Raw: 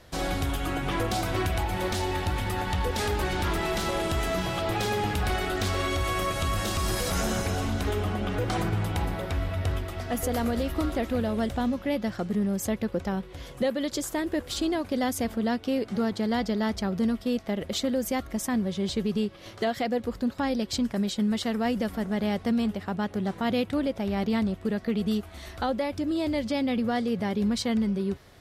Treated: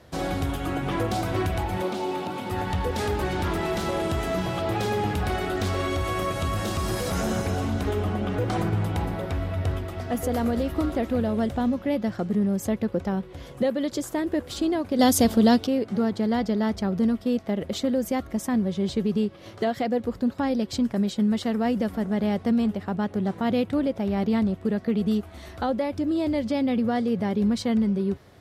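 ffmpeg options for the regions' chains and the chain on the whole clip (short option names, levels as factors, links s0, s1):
-filter_complex "[0:a]asettb=1/sr,asplit=3[s0][s1][s2];[s0]atrim=end=1.824[s3];[s1]atrim=start=1.82:end=2.51,asetpts=PTS-STARTPTS,afade=t=in:d=0.004:c=qsin,afade=t=out:st=0.686:d=0.004:c=qsin,highpass=f=170:w=0.5412,highpass=f=170:w=1.3066,acrossover=split=3800[s4][s5];[s5]acompressor=threshold=0.00708:ratio=4:attack=1:release=60[s6];[s4][s6]amix=inputs=2:normalize=0,equalizer=f=1800:w=5.5:g=-11.5[s7];[s2]atrim=start=2.506[s8];[s3][s7]acrossfade=d=0.004:c1=hsin:c2=qsin[s9];[s9][s8]acrossfade=d=0.004:c1=qsin:c2=hsin,asettb=1/sr,asplit=3[s10][s11][s12];[s10]atrim=end=14.994[s13];[s11]atrim=start=14.99:end=15.67,asetpts=PTS-STARTPTS,afade=t=in:d=0.004:c=qsin,afade=t=out:st=0.676:d=0.004:c=qsin,highshelf=f=2900:t=q:w=1.5:g=6.5,acontrast=72[s14];[s12]atrim=start=15.666[s15];[s13][s14]acrossfade=d=0.004:c1=hsin:c2=qsin[s16];[s16][s15]acrossfade=d=0.004:c1=qsin:c2=hsin,highpass=70,tiltshelf=f=1200:g=3.5"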